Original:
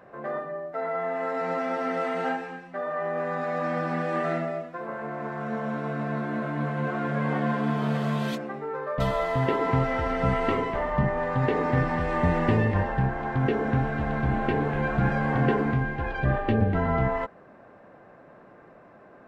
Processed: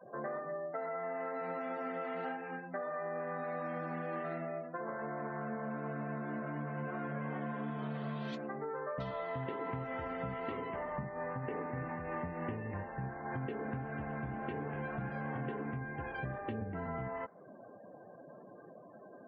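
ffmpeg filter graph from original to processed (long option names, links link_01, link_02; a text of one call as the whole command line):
ffmpeg -i in.wav -filter_complex "[0:a]asettb=1/sr,asplit=3[link_01][link_02][link_03];[link_01]atrim=end=10.974[link_04];[link_02]atrim=start=10.97:end=13.32,asetpts=PTS-STARTPTS,afade=type=in:duration=0.004:curve=qsin,afade=type=out:start_time=2.346:duration=0.004:curve=qsin,lowpass=frequency=2900:width=0.5412,lowpass=frequency=2900:width=1.3066,tremolo=f=3.3:d=0.43[link_05];[link_03]atrim=start=13.316[link_06];[link_04][link_05]acrossfade=duration=0.004:curve1=hsin:curve2=qsin[link_07];[link_07][link_06]acrossfade=duration=0.004:curve1=qsin:curve2=hsin,afftdn=noise_reduction=35:noise_floor=-47,acompressor=threshold=-37dB:ratio=6,highpass=91" out.wav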